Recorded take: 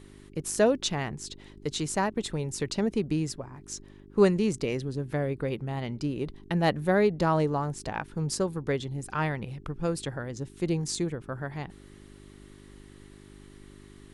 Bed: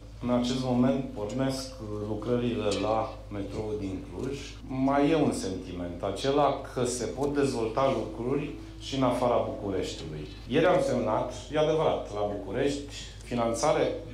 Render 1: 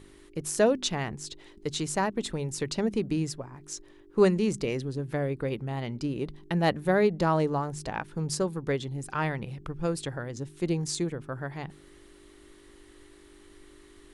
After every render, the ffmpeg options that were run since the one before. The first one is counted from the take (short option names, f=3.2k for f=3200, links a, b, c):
-af "bandreject=f=50:t=h:w=4,bandreject=f=100:t=h:w=4,bandreject=f=150:t=h:w=4,bandreject=f=200:t=h:w=4,bandreject=f=250:t=h:w=4"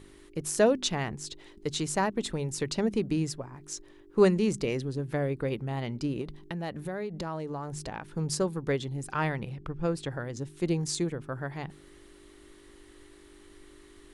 -filter_complex "[0:a]asettb=1/sr,asplit=3[a][b][c];[a]atrim=end=6.214[d];[b]atrim=start=6.21:end=8.03,asetpts=PTS-STARTPTS,afade=t=in:d=0.004:c=qsin,afade=t=out:st=1.816:d=0.004:c=qsin,acompressor=threshold=-32dB:ratio=5:attack=3.2:release=140:knee=1:detection=peak[e];[c]atrim=start=8.026[f];[d][e]acrossfade=d=0.004:c1=hsin:c2=qsin[g];[g][f]acrossfade=d=0.004:c1=qsin:c2=hsin,asettb=1/sr,asplit=3[h][i][j];[h]atrim=end=9.494[k];[i]atrim=start=9.49:end=10.11,asetpts=PTS-STARTPTS,afade=t=in:d=0.004:c=qsin,afade=t=out:st=0.616:d=0.004:c=qsin,lowpass=f=3.7k:p=1[l];[j]atrim=start=10.106[m];[k][l]acrossfade=d=0.004:c1=hsin:c2=qsin[n];[n][m]acrossfade=d=0.004:c1=qsin:c2=hsin"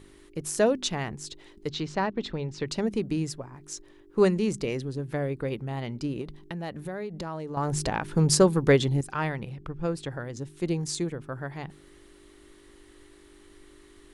-filter_complex "[0:a]asettb=1/sr,asplit=3[a][b][c];[a]atrim=end=1.694[d];[b]atrim=start=1.69:end=2.68,asetpts=PTS-STARTPTS,afade=t=in:d=0.004:c=qsin,afade=t=out:st=0.986:d=0.004:c=qsin,lowpass=f=4.9k:w=0.5412,lowpass=f=4.9k:w=1.3066[e];[c]atrim=start=2.676[f];[d][e]acrossfade=d=0.004:c1=hsin:c2=qsin[g];[g][f]acrossfade=d=0.004:c1=qsin:c2=hsin,asplit=3[h][i][j];[h]atrim=end=7.572[k];[i]atrim=start=7.568:end=9.012,asetpts=PTS-STARTPTS,volume=9.5dB[l];[j]atrim=start=9.008[m];[k][l]acrossfade=d=0.004:c1=hsin:c2=hsin[n];[n][m]acrossfade=d=0.004:c1=hsin:c2=hsin"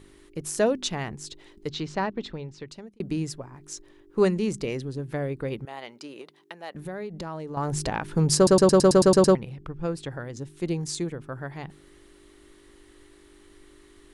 -filter_complex "[0:a]asettb=1/sr,asplit=3[a][b][c];[a]atrim=end=5.654[d];[b]atrim=start=5.65:end=6.75,asetpts=PTS-STARTPTS,afade=t=in:d=0.004:c=qsin,afade=t=out:st=1.096:d=0.004:c=qsin,highpass=530[e];[c]atrim=start=6.746[f];[d][e]acrossfade=d=0.004:c1=hsin:c2=qsin[g];[g][f]acrossfade=d=0.004:c1=qsin:c2=hsin,asplit=11[h][i][j][k][l][m][n][o][p][q][r];[h]atrim=end=3,asetpts=PTS-STARTPTS,afade=t=out:st=2.04:d=0.96[s];[i]atrim=start=3:end=8.472,asetpts=PTS-STARTPTS,afade=t=in:d=0.004:c=hsin[t];[j]atrim=start=8.358:end=8.472[u];[k]atrim=start=8.358:end=8.472[v];[l]atrim=start=8.358:end=8.472[w];[m]atrim=start=8.358:end=8.472[x];[n]atrim=start=8.358:end=8.472[y];[o]atrim=start=8.358:end=8.472[z];[p]atrim=start=8.358:end=8.472[aa];[q]atrim=start=8.358:end=8.472[ab];[r]atrim=start=9.348[ac];[s][t]concat=n=2:v=0:a=1[ad];[ad][u]acrossfade=d=0.004:c1=hsin:c2=hsin[ae];[ae][v]acrossfade=d=0.004:c1=hsin:c2=hsin[af];[af][w]acrossfade=d=0.004:c1=hsin:c2=hsin[ag];[ag][x]acrossfade=d=0.004:c1=hsin:c2=hsin[ah];[ah][y]acrossfade=d=0.004:c1=hsin:c2=hsin[ai];[ai][z]acrossfade=d=0.004:c1=hsin:c2=hsin[aj];[aj][aa]acrossfade=d=0.004:c1=hsin:c2=hsin[ak];[ak][ab]acrossfade=d=0.004:c1=hsin:c2=hsin[al];[al][ac]acrossfade=d=0.004:c1=hsin:c2=hsin"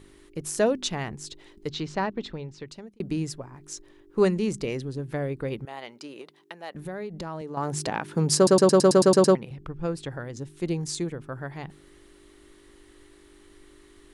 -filter_complex "[0:a]asettb=1/sr,asplit=3[a][b][c];[a]atrim=end=7.414[d];[b]atrim=start=7.41:end=9.51,asetpts=PTS-STARTPTS,afade=t=in:d=0.004:c=qsin,afade=t=out:st=2.096:d=0.004:c=qsin,highpass=150[e];[c]atrim=start=9.506[f];[d][e]acrossfade=d=0.004:c1=hsin:c2=qsin[g];[g][f]acrossfade=d=0.004:c1=qsin:c2=hsin"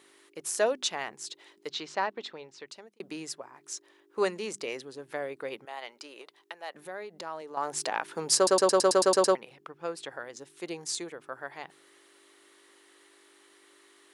-af "highpass=560"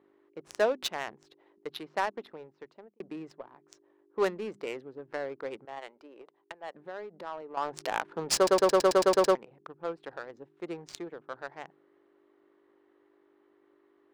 -af "adynamicsmooth=sensitivity=4:basefreq=810"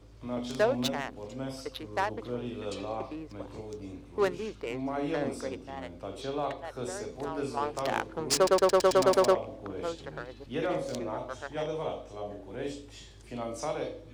-filter_complex "[1:a]volume=-8.5dB[a];[0:a][a]amix=inputs=2:normalize=0"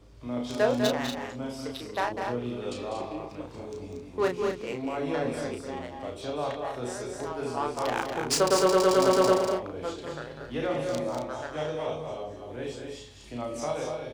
-filter_complex "[0:a]asplit=2[a][b];[b]adelay=33,volume=-5dB[c];[a][c]amix=inputs=2:normalize=0,aecho=1:1:198.3|236.2:0.398|0.447"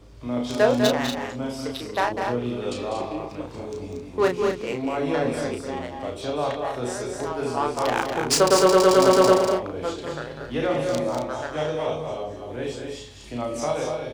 -af "volume=5.5dB"